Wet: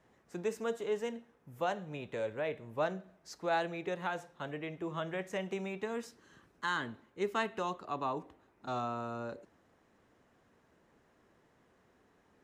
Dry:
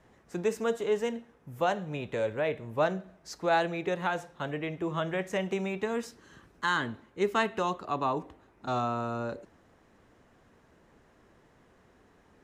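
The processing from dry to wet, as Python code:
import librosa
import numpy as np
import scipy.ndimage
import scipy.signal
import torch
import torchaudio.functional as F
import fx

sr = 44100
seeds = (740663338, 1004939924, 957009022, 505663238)

y = fx.low_shelf(x, sr, hz=67.0, db=-9.5)
y = y * 10.0 ** (-6.0 / 20.0)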